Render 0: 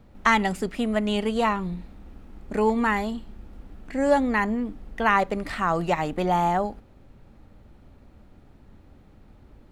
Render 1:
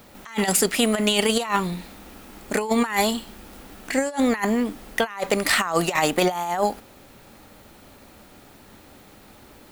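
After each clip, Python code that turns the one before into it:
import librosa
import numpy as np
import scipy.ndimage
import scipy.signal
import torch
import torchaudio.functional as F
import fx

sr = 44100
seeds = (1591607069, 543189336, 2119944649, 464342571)

y = fx.riaa(x, sr, side='recording')
y = fx.over_compress(y, sr, threshold_db=-28.0, ratio=-0.5)
y = F.gain(torch.from_numpy(y), 7.0).numpy()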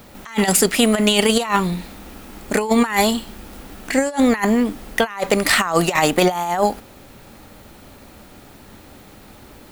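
y = fx.low_shelf(x, sr, hz=190.0, db=4.0)
y = F.gain(torch.from_numpy(y), 4.0).numpy()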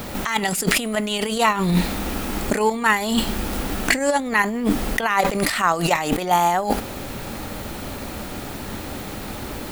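y = fx.over_compress(x, sr, threshold_db=-26.0, ratio=-1.0)
y = F.gain(torch.from_numpy(y), 5.0).numpy()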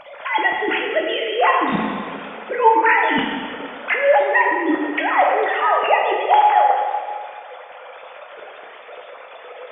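y = fx.sine_speech(x, sr)
y = fx.rev_plate(y, sr, seeds[0], rt60_s=1.8, hf_ratio=0.9, predelay_ms=0, drr_db=-0.5)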